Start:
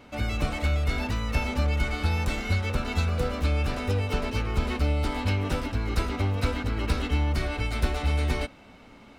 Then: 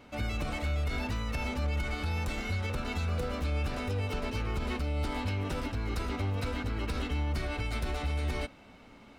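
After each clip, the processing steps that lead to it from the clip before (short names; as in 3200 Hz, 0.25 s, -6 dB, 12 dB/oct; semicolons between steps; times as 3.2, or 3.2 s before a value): limiter -20.5 dBFS, peak gain reduction 8.5 dB; gain -3.5 dB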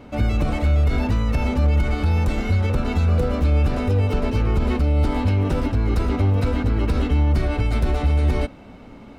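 tilt shelf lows +5.5 dB; gain +8.5 dB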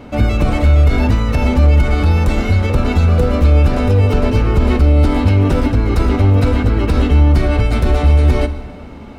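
plate-style reverb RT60 1.8 s, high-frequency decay 0.75×, DRR 11.5 dB; gain +7 dB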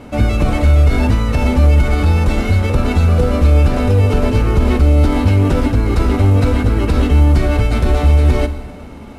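CVSD 64 kbps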